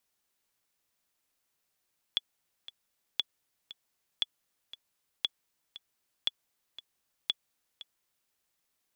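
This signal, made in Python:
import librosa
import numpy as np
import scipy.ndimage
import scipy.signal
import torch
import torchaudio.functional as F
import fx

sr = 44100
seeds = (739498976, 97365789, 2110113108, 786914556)

y = fx.click_track(sr, bpm=117, beats=2, bars=6, hz=3410.0, accent_db=17.0, level_db=-14.0)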